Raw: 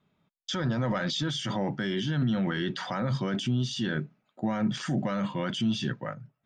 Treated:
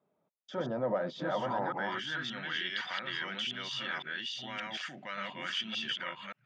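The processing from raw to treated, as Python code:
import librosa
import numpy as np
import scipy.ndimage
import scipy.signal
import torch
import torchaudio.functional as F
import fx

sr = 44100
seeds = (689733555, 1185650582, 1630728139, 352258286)

y = fx.reverse_delay(x, sr, ms=575, wet_db=-0.5)
y = fx.filter_sweep_bandpass(y, sr, from_hz=570.0, to_hz=2400.0, start_s=1.09, end_s=2.52, q=1.8)
y = F.gain(torch.from_numpy(y), 3.0).numpy()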